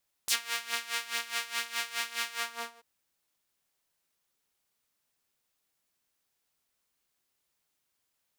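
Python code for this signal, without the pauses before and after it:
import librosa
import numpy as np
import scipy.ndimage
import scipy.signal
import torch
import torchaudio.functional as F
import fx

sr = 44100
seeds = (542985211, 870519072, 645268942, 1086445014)

y = fx.sub_patch_tremolo(sr, seeds[0], note=58, wave='saw', wave2='saw', interval_st=0, detune_cents=16, level2_db=-9.0, sub_db=-28, noise_db=-30.0, kind='highpass', cutoff_hz=630.0, q=1.0, env_oct=4.0, env_decay_s=0.07, env_sustain_pct=40, attack_ms=3.3, decay_s=0.08, sustain_db=-14.0, release_s=0.5, note_s=2.04, lfo_hz=4.8, tremolo_db=16.5)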